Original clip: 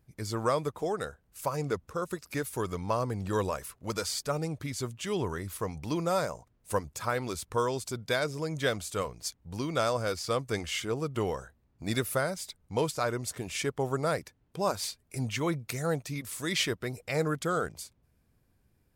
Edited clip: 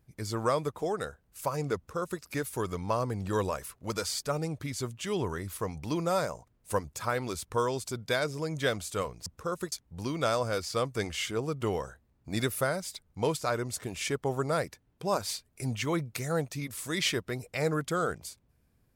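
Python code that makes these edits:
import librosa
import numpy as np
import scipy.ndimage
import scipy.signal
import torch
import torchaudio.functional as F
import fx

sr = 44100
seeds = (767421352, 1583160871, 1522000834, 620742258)

y = fx.edit(x, sr, fx.duplicate(start_s=1.76, length_s=0.46, to_s=9.26), tone=tone)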